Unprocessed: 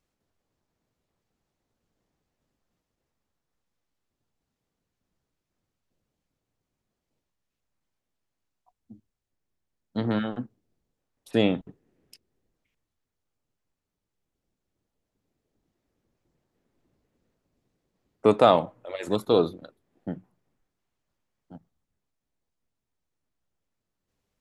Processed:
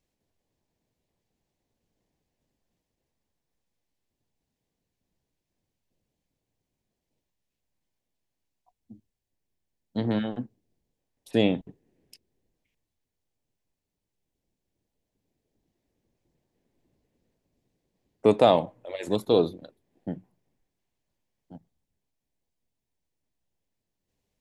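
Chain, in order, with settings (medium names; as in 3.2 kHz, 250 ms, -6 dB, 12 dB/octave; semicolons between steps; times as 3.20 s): peaking EQ 1.3 kHz -10.5 dB 0.46 oct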